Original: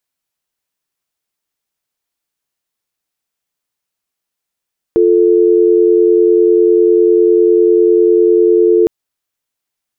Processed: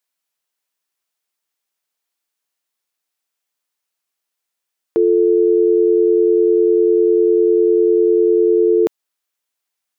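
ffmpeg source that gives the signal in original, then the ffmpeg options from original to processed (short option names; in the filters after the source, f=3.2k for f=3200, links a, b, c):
-f lavfi -i "aevalsrc='0.355*(sin(2*PI*350*t)+sin(2*PI*440*t))':d=3.91:s=44100"
-af "highpass=f=470:p=1"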